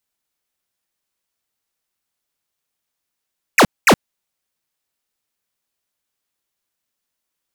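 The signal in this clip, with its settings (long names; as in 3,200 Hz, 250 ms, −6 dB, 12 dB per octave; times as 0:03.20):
repeated falling chirps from 2,800 Hz, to 140 Hz, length 0.07 s square, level −9 dB, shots 2, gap 0.22 s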